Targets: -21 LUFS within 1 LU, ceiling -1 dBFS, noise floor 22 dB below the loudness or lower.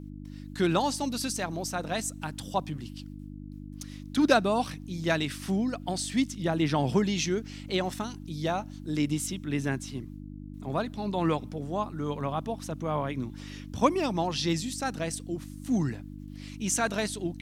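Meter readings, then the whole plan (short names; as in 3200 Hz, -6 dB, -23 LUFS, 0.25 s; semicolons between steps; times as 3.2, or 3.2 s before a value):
hum 50 Hz; harmonics up to 300 Hz; hum level -39 dBFS; loudness -30.0 LUFS; peak -8.5 dBFS; loudness target -21.0 LUFS
-> de-hum 50 Hz, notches 6; gain +9 dB; limiter -1 dBFS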